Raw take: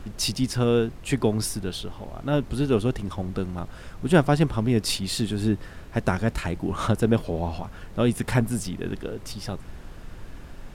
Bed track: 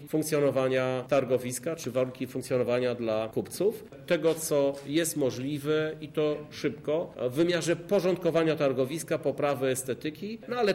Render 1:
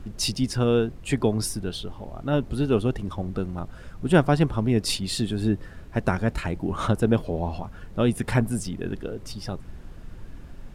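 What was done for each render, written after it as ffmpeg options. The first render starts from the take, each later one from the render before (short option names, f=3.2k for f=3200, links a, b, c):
-af "afftdn=nr=6:nf=-42"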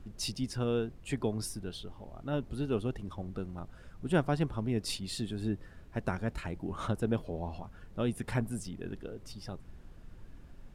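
-af "volume=-10dB"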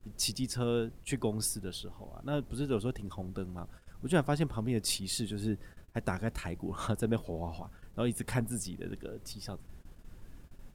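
-af "agate=range=-21dB:threshold=-49dB:ratio=16:detection=peak,highshelf=f=6.9k:g=12"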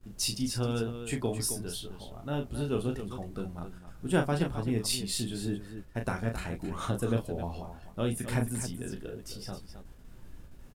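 -filter_complex "[0:a]asplit=2[a][b];[b]adelay=16,volume=-10.5dB[c];[a][c]amix=inputs=2:normalize=0,aecho=1:1:34.99|265.3:0.501|0.316"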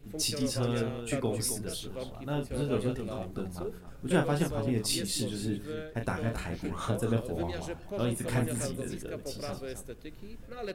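-filter_complex "[1:a]volume=-12.5dB[a];[0:a][a]amix=inputs=2:normalize=0"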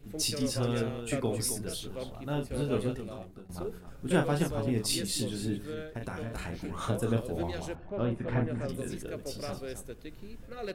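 -filter_complex "[0:a]asettb=1/sr,asplit=3[a][b][c];[a]atrim=end=5.634[d];[b]atrim=start=5.63:end=6.81,asetpts=PTS-STARTPTS,afade=t=in:d=0.004:c=qsin,afade=t=out:st=1.176:d=0.004:c=qsin,acompressor=threshold=-32dB:ratio=10:attack=3.2:release=140:knee=1:detection=peak[e];[c]atrim=start=6.806[f];[d][e]acrossfade=d=0.004:c1=hsin:c2=qsin[g];[g][f]acrossfade=d=0.004:c1=qsin:c2=hsin,asettb=1/sr,asplit=3[h][i][j];[h]atrim=end=7.754[k];[i]atrim=start=7.75:end=8.69,asetpts=PTS-STARTPTS,afade=t=in:d=0.004:c=qsin,afade=t=out:st=0.936:d=0.004:c=qsin,lowpass=2k[l];[j]atrim=start=8.686[m];[k][l]acrossfade=d=0.004:c1=hsin:c2=qsin[n];[n][m]acrossfade=d=0.004:c1=qsin:c2=hsin,asplit=2[o][p];[o]atrim=end=3.49,asetpts=PTS-STARTPTS,afade=t=out:st=2.8:d=0.69:silence=0.11885[q];[p]atrim=start=3.49,asetpts=PTS-STARTPTS,afade=t=in:d=0.004:c=hsin:silence=0.11885[r];[q][r]concat=n=2:v=0:a=1"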